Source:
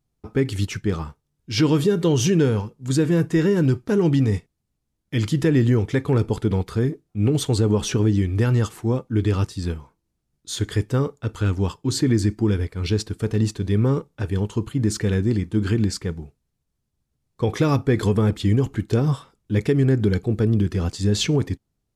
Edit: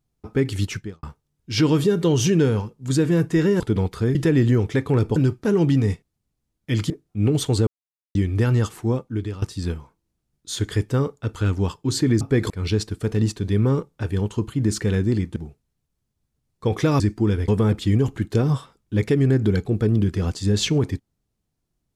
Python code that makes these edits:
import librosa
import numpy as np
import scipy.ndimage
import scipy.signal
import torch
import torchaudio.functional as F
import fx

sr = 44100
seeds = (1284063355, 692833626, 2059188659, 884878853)

y = fx.edit(x, sr, fx.fade_out_span(start_s=0.76, length_s=0.27, curve='qua'),
    fx.swap(start_s=3.6, length_s=1.74, other_s=6.35, other_length_s=0.55),
    fx.silence(start_s=7.67, length_s=0.48),
    fx.fade_out_to(start_s=8.9, length_s=0.52, floor_db=-16.0),
    fx.swap(start_s=12.21, length_s=0.48, other_s=17.77, other_length_s=0.29),
    fx.cut(start_s=15.55, length_s=0.58), tone=tone)